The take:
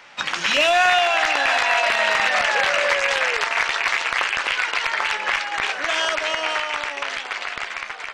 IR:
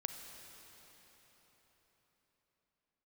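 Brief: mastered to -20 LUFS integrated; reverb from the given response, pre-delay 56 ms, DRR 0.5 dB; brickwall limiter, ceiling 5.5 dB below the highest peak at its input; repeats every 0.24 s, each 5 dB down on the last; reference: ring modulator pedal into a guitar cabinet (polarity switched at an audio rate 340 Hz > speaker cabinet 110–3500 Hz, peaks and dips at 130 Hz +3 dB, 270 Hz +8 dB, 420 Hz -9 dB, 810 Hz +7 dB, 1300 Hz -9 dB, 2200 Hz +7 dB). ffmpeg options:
-filter_complex "[0:a]alimiter=limit=-16dB:level=0:latency=1,aecho=1:1:240|480|720|960|1200|1440|1680:0.562|0.315|0.176|0.0988|0.0553|0.031|0.0173,asplit=2[a][b];[1:a]atrim=start_sample=2205,adelay=56[c];[b][c]afir=irnorm=-1:irlink=0,volume=0dB[d];[a][d]amix=inputs=2:normalize=0,aeval=exprs='val(0)*sgn(sin(2*PI*340*n/s))':c=same,highpass=110,equalizer=f=130:t=q:w=4:g=3,equalizer=f=270:t=q:w=4:g=8,equalizer=f=420:t=q:w=4:g=-9,equalizer=f=810:t=q:w=4:g=7,equalizer=f=1.3k:t=q:w=4:g=-9,equalizer=f=2.2k:t=q:w=4:g=7,lowpass=f=3.5k:w=0.5412,lowpass=f=3.5k:w=1.3066,volume=-1.5dB"

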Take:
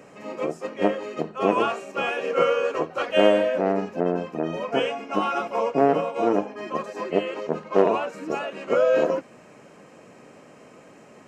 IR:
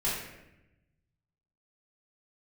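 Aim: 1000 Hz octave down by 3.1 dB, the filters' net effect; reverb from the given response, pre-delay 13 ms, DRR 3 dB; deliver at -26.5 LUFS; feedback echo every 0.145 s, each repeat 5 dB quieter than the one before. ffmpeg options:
-filter_complex "[0:a]equalizer=f=1k:t=o:g=-4.5,aecho=1:1:145|290|435|580|725|870|1015:0.562|0.315|0.176|0.0988|0.0553|0.031|0.0173,asplit=2[a][b];[1:a]atrim=start_sample=2205,adelay=13[c];[b][c]afir=irnorm=-1:irlink=0,volume=-11dB[d];[a][d]amix=inputs=2:normalize=0,volume=-5dB"

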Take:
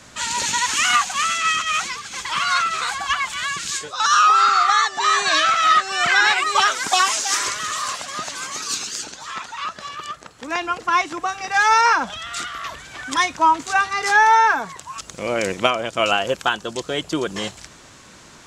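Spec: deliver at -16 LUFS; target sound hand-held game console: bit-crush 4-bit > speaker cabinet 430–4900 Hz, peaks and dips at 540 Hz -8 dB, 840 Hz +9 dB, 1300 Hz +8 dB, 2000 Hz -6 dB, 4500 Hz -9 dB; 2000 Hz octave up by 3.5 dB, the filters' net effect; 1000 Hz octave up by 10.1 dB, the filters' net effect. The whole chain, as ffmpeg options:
-af "equalizer=f=1k:t=o:g=3.5,equalizer=f=2k:t=o:g=3,acrusher=bits=3:mix=0:aa=0.000001,highpass=430,equalizer=f=540:t=q:w=4:g=-8,equalizer=f=840:t=q:w=4:g=9,equalizer=f=1.3k:t=q:w=4:g=8,equalizer=f=2k:t=q:w=4:g=-6,equalizer=f=4.5k:t=q:w=4:g=-9,lowpass=f=4.9k:w=0.5412,lowpass=f=4.9k:w=1.3066,volume=-6dB"

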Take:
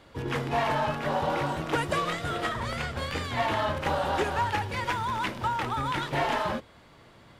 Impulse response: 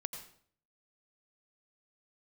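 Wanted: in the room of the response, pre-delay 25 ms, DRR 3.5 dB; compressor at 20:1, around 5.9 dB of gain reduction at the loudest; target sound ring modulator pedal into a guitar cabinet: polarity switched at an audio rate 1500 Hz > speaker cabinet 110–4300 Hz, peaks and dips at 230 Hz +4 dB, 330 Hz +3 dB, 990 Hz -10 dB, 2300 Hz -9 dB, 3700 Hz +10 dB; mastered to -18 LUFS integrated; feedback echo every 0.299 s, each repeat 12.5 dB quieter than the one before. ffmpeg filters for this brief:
-filter_complex "[0:a]acompressor=threshold=-28dB:ratio=20,aecho=1:1:299|598|897:0.237|0.0569|0.0137,asplit=2[a][b];[1:a]atrim=start_sample=2205,adelay=25[c];[b][c]afir=irnorm=-1:irlink=0,volume=-3dB[d];[a][d]amix=inputs=2:normalize=0,aeval=exprs='val(0)*sgn(sin(2*PI*1500*n/s))':c=same,highpass=110,equalizer=f=230:t=q:w=4:g=4,equalizer=f=330:t=q:w=4:g=3,equalizer=f=990:t=q:w=4:g=-10,equalizer=f=2.3k:t=q:w=4:g=-9,equalizer=f=3.7k:t=q:w=4:g=10,lowpass=f=4.3k:w=0.5412,lowpass=f=4.3k:w=1.3066,volume=12.5dB"

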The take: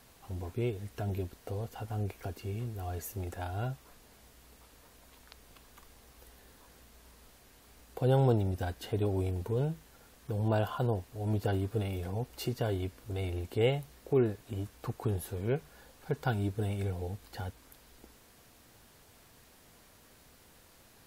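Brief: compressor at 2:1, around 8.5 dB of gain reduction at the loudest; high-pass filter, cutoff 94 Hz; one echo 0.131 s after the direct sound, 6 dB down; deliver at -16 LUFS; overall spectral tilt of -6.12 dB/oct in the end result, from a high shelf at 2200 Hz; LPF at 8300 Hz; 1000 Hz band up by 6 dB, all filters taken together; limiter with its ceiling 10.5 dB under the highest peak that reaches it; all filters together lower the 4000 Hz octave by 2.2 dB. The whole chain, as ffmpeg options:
-af "highpass=94,lowpass=8.3k,equalizer=f=1k:t=o:g=8,highshelf=f=2.2k:g=5,equalizer=f=4k:t=o:g=-9,acompressor=threshold=-36dB:ratio=2,alimiter=level_in=7dB:limit=-24dB:level=0:latency=1,volume=-7dB,aecho=1:1:131:0.501,volume=26dB"

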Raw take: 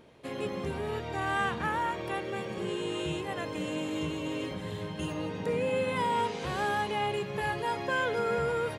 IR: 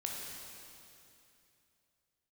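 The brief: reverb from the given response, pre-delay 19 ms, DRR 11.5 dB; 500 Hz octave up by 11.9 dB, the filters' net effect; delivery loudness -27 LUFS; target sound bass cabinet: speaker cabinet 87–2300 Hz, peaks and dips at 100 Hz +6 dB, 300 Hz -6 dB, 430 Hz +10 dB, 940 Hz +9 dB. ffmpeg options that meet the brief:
-filter_complex "[0:a]equalizer=f=500:t=o:g=6.5,asplit=2[a][b];[1:a]atrim=start_sample=2205,adelay=19[c];[b][c]afir=irnorm=-1:irlink=0,volume=-13dB[d];[a][d]amix=inputs=2:normalize=0,highpass=f=87:w=0.5412,highpass=f=87:w=1.3066,equalizer=f=100:t=q:w=4:g=6,equalizer=f=300:t=q:w=4:g=-6,equalizer=f=430:t=q:w=4:g=10,equalizer=f=940:t=q:w=4:g=9,lowpass=f=2.3k:w=0.5412,lowpass=f=2.3k:w=1.3066,volume=-4dB"

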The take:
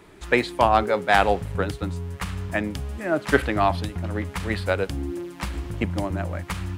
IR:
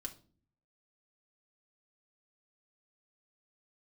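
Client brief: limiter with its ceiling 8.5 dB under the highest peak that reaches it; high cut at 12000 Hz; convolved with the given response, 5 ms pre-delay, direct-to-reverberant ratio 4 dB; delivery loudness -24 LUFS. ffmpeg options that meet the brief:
-filter_complex "[0:a]lowpass=12k,alimiter=limit=-11.5dB:level=0:latency=1,asplit=2[a][b];[1:a]atrim=start_sample=2205,adelay=5[c];[b][c]afir=irnorm=-1:irlink=0,volume=-0.5dB[d];[a][d]amix=inputs=2:normalize=0,volume=1.5dB"

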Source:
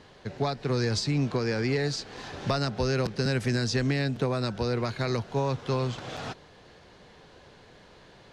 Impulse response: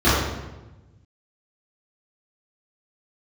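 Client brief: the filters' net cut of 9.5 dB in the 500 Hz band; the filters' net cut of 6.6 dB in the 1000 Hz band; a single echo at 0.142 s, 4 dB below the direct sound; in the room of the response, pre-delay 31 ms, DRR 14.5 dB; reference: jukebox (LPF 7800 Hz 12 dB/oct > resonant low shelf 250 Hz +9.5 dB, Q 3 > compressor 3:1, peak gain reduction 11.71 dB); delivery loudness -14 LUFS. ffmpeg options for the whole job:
-filter_complex "[0:a]equalizer=f=500:t=o:g=-5.5,equalizer=f=1k:t=o:g=-6,aecho=1:1:142:0.631,asplit=2[a][b];[1:a]atrim=start_sample=2205,adelay=31[c];[b][c]afir=irnorm=-1:irlink=0,volume=-37.5dB[d];[a][d]amix=inputs=2:normalize=0,lowpass=7.8k,lowshelf=f=250:t=q:w=3:g=9.5,acompressor=threshold=-24dB:ratio=3,volume=12dB"

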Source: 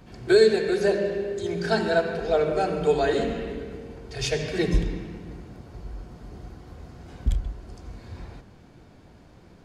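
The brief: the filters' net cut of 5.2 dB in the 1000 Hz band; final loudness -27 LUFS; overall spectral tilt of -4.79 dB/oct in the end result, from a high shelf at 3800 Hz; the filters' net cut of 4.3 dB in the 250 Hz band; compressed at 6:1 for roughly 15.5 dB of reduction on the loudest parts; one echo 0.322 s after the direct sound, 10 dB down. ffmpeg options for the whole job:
-af "equalizer=f=250:t=o:g=-6.5,equalizer=f=1k:t=o:g=-8.5,highshelf=f=3.8k:g=4.5,acompressor=threshold=-33dB:ratio=6,aecho=1:1:322:0.316,volume=11.5dB"

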